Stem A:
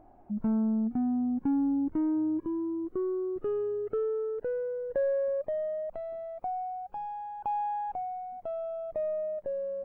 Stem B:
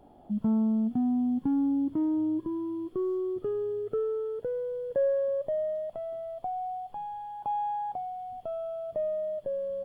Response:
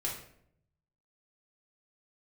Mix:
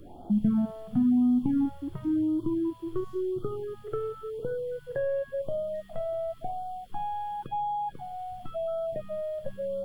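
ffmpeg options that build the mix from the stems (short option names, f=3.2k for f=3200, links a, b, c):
-filter_complex "[0:a]asoftclip=type=hard:threshold=-27dB,lowpass=1.5k,acompressor=threshold=-31dB:ratio=12,volume=-2dB,asplit=2[a][b];[b]volume=-23.5dB[c];[1:a]highshelf=f=2.4k:g=5.5,volume=1.5dB,asplit=2[d][e];[e]volume=-6dB[f];[2:a]atrim=start_sample=2205[g];[c][f]amix=inputs=2:normalize=0[h];[h][g]afir=irnorm=-1:irlink=0[i];[a][d][i]amix=inputs=3:normalize=0,lowshelf=f=260:g=6,acrossover=split=240|800[j][k][l];[j]acompressor=threshold=-22dB:ratio=4[m];[k]acompressor=threshold=-38dB:ratio=4[n];[l]acompressor=threshold=-34dB:ratio=4[o];[m][n][o]amix=inputs=3:normalize=0,afftfilt=real='re*(1-between(b*sr/1024,210*pow(2200/210,0.5+0.5*sin(2*PI*0.94*pts/sr))/1.41,210*pow(2200/210,0.5+0.5*sin(2*PI*0.94*pts/sr))*1.41))':imag='im*(1-between(b*sr/1024,210*pow(2200/210,0.5+0.5*sin(2*PI*0.94*pts/sr))/1.41,210*pow(2200/210,0.5+0.5*sin(2*PI*0.94*pts/sr))*1.41))':win_size=1024:overlap=0.75"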